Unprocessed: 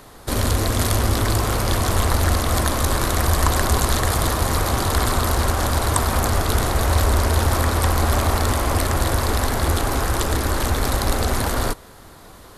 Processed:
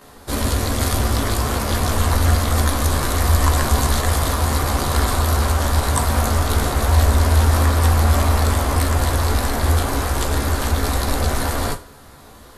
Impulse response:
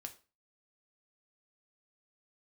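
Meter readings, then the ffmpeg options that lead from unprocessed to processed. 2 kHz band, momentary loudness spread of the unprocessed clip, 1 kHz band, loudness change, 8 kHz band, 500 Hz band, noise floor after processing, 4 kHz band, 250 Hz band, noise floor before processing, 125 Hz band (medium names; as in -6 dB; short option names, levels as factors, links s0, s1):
0.0 dB, 3 LU, 0.0 dB, +1.5 dB, 0.0 dB, -0.5 dB, -43 dBFS, 0.0 dB, +1.0 dB, -44 dBFS, +3.0 dB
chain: -filter_complex "[0:a]asplit=2[s0][s1];[1:a]atrim=start_sample=2205,adelay=14[s2];[s1][s2]afir=irnorm=-1:irlink=0,volume=3.16[s3];[s0][s3]amix=inputs=2:normalize=0,volume=0.473"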